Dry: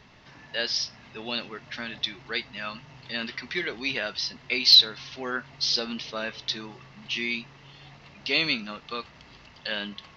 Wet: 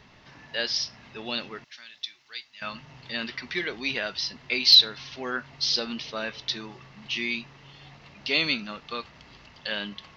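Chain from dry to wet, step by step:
0:01.64–0:02.62: first-order pre-emphasis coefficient 0.97

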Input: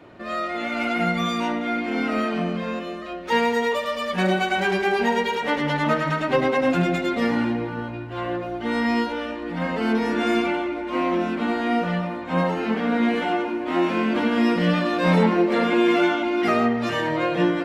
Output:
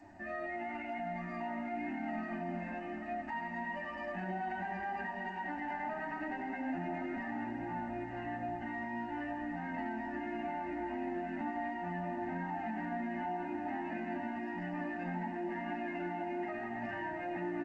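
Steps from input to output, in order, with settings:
parametric band 890 Hz +4 dB 0.29 octaves
notch filter 5,600 Hz, Q 20
comb filter 1.1 ms, depth 87%
downward compressor 8 to 1, threshold −23 dBFS, peak gain reduction 12.5 dB
phaser with its sweep stopped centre 720 Hz, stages 8
flanger 0.95 Hz, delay 9.9 ms, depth 1.9 ms, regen +8%
brickwall limiter −27 dBFS, peak gain reduction 9 dB
high-frequency loss of the air 360 metres
on a send: feedback delay with all-pass diffusion 1,004 ms, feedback 40%, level −8 dB
on the sum: level −3 dB
G.722 64 kbit/s 16,000 Hz

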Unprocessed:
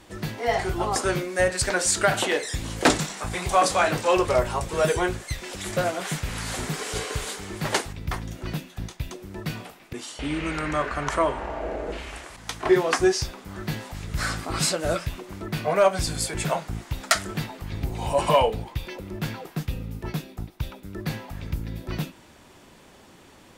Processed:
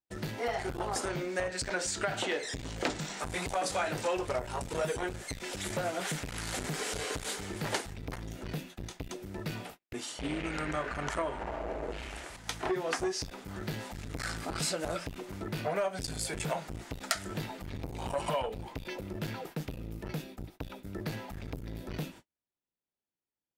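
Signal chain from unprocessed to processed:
noise gate −44 dBFS, range −46 dB
notch filter 1,100 Hz, Q 11
downward compressor 6 to 1, threshold −25 dBFS, peak gain reduction 11.5 dB
0:01.08–0:03.20: parametric band 11,000 Hz −13.5 dB 0.56 octaves
saturating transformer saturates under 1,300 Hz
level −2.5 dB

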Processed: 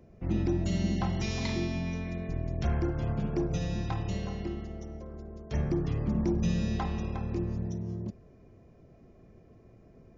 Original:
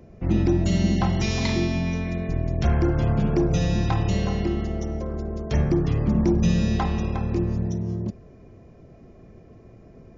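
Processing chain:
0:02.80–0:05.63: expander for the loud parts 1.5 to 1, over −30 dBFS
level −8 dB

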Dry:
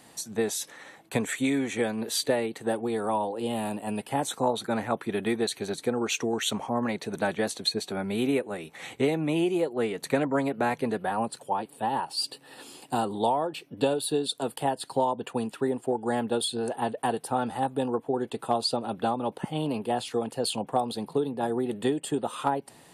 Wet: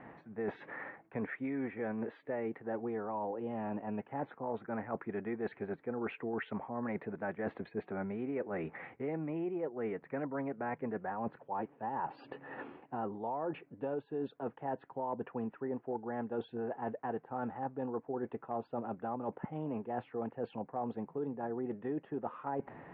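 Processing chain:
Butterworth low-pass 2,100 Hz 36 dB per octave
reversed playback
downward compressor 8 to 1, threshold −39 dBFS, peak gain reduction 19.5 dB
reversed playback
level +4 dB

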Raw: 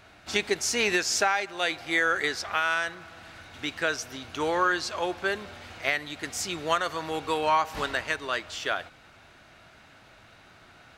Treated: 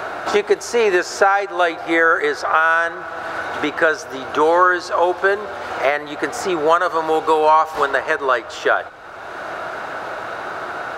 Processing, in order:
flat-topped bell 740 Hz +13.5 dB 2.5 octaves
multiband upward and downward compressor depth 70%

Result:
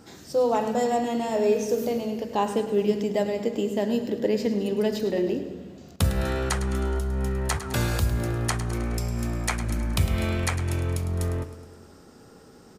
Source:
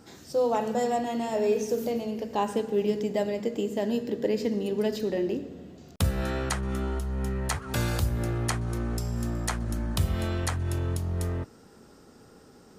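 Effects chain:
0:08.74–0:11.08: parametric band 2,300 Hz +11 dB 0.23 octaves
repeating echo 105 ms, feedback 56%, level −12.5 dB
level +2.5 dB

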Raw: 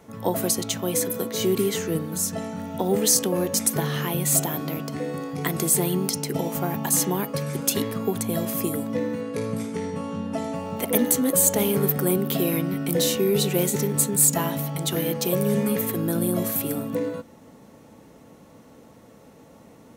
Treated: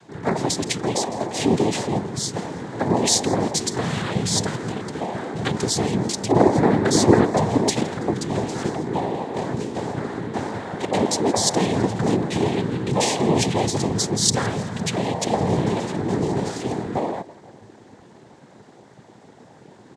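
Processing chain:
0:06.28–0:07.69: parametric band 370 Hz +12 dB 2 octaves
repeating echo 165 ms, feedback 51%, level −21 dB
cochlear-implant simulation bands 6
level +2.5 dB

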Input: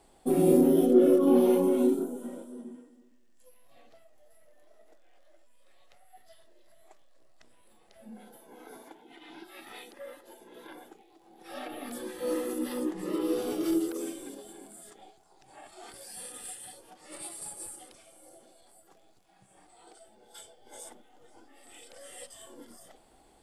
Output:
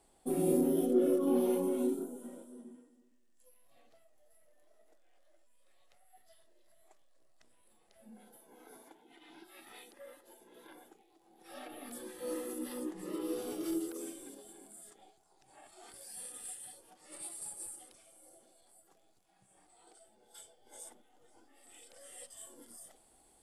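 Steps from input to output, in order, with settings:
parametric band 10,000 Hz +6 dB 1.1 octaves, from 0:22.37 +13.5 dB
level −8 dB

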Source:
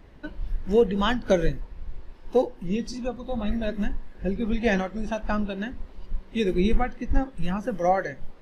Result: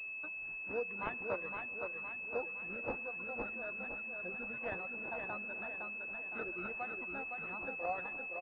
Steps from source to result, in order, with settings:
low-shelf EQ 140 Hz −7.5 dB
pitch vibrato 1.6 Hz 21 cents
first difference
in parallel at +2.5 dB: downward compressor, threshold −55 dBFS, peak gain reduction 20.5 dB
on the sum: reverb reduction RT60 0.68 s
repeating echo 513 ms, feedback 51%, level −5 dB
on a send at −20 dB: convolution reverb RT60 3.8 s, pre-delay 52 ms
on the sum: switching amplifier with a slow clock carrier 2,600 Hz
level +3 dB

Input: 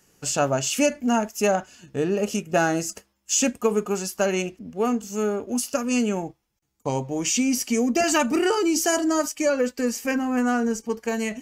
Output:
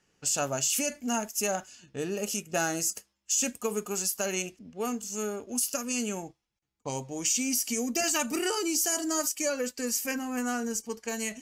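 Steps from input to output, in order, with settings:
first-order pre-emphasis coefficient 0.8
brickwall limiter −21.5 dBFS, peak gain reduction 10 dB
low-pass that shuts in the quiet parts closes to 2,700 Hz, open at −33 dBFS
level +4.5 dB

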